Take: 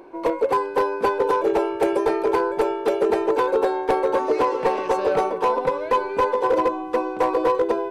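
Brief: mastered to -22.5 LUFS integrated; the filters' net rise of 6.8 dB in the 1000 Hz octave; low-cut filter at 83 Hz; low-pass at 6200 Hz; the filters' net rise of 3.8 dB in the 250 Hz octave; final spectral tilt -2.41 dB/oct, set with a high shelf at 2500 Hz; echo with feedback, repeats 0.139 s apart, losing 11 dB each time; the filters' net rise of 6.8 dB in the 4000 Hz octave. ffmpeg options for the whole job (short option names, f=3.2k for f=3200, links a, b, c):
-af "highpass=83,lowpass=6.2k,equalizer=f=250:t=o:g=5.5,equalizer=f=1k:t=o:g=6.5,highshelf=f=2.5k:g=3.5,equalizer=f=4k:t=o:g=6,aecho=1:1:139|278|417:0.282|0.0789|0.0221,volume=-5.5dB"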